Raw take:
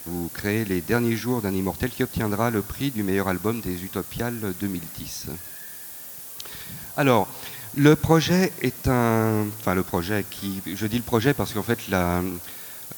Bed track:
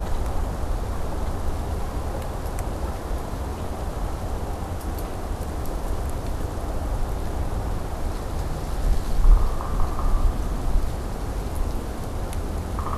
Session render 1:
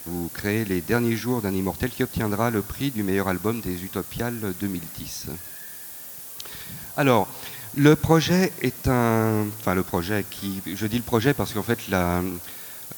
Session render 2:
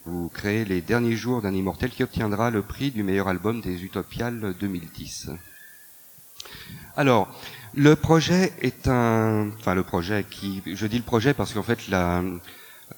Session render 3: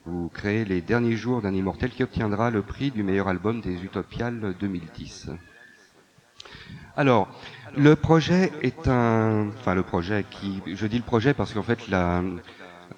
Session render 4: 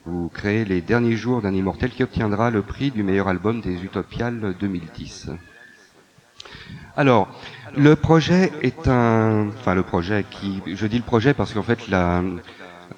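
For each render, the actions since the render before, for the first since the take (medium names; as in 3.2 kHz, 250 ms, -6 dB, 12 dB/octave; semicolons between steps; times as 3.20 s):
no audible change
noise print and reduce 10 dB
distance through air 130 m; thinning echo 674 ms, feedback 58%, level -20 dB
trim +4 dB; peak limiter -2 dBFS, peak gain reduction 2 dB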